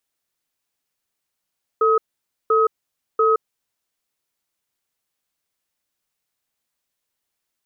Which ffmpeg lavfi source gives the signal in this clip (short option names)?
-f lavfi -i "aevalsrc='0.158*(sin(2*PI*444*t)+sin(2*PI*1270*t))*clip(min(mod(t,0.69),0.17-mod(t,0.69))/0.005,0,1)':d=1.67:s=44100"